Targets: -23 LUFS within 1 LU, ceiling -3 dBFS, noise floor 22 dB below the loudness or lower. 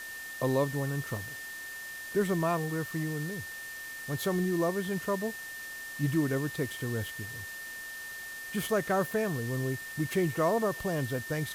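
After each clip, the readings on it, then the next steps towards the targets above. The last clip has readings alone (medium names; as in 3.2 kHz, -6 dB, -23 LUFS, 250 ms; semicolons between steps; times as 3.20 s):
steady tone 1.8 kHz; tone level -40 dBFS; noise floor -42 dBFS; noise floor target -55 dBFS; loudness -32.5 LUFS; peak level -17.0 dBFS; loudness target -23.0 LUFS
-> band-stop 1.8 kHz, Q 30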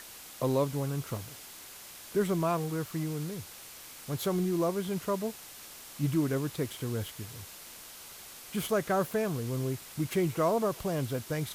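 steady tone not found; noise floor -48 dBFS; noise floor target -54 dBFS
-> noise reduction 6 dB, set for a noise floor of -48 dBFS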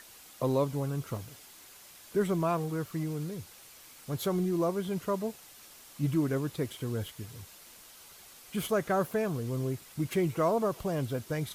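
noise floor -53 dBFS; noise floor target -54 dBFS
-> noise reduction 6 dB, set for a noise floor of -53 dBFS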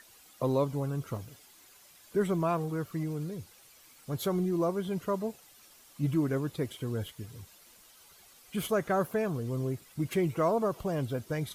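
noise floor -58 dBFS; loudness -32.0 LUFS; peak level -17.5 dBFS; loudness target -23.0 LUFS
-> trim +9 dB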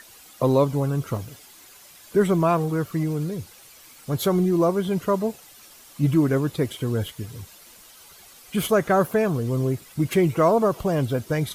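loudness -23.0 LUFS; peak level -8.5 dBFS; noise floor -49 dBFS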